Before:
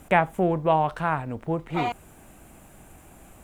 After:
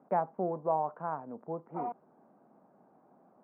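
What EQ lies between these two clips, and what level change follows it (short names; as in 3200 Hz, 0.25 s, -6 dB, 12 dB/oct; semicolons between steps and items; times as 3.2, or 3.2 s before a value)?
HPF 200 Hz 24 dB/oct; LPF 1100 Hz 24 dB/oct; bell 320 Hz -6 dB 0.28 oct; -8.0 dB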